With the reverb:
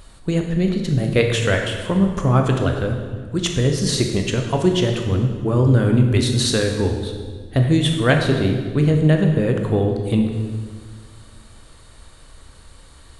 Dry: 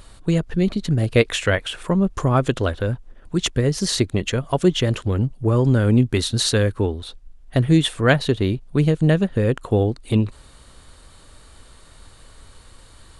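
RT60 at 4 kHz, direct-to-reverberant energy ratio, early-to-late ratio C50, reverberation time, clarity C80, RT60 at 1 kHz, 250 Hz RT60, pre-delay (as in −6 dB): 1.3 s, 3.0 dB, 5.0 dB, 1.7 s, 6.5 dB, 1.5 s, 2.0 s, 14 ms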